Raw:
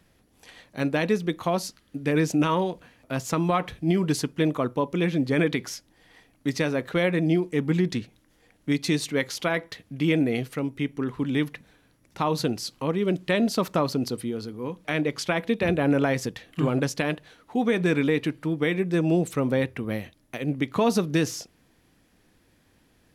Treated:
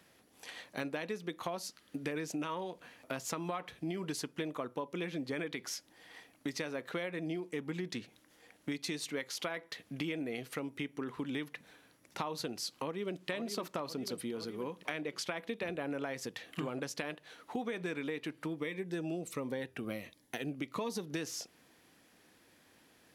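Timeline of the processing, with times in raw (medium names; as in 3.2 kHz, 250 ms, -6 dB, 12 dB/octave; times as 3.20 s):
12.78–13.29 s: echo throw 510 ms, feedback 50%, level -8 dB
18.60–21.10 s: Shepard-style phaser falling 1.4 Hz
whole clip: high-pass 400 Hz 6 dB/octave; compression 6:1, threshold -37 dBFS; trim +1.5 dB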